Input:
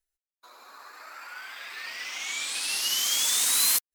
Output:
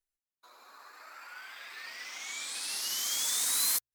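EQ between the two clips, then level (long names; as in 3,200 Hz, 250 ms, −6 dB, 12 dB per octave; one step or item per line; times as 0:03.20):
mains-hum notches 60/120 Hz
dynamic equaliser 2,800 Hz, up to −7 dB, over −46 dBFS, Q 3.5
−5.5 dB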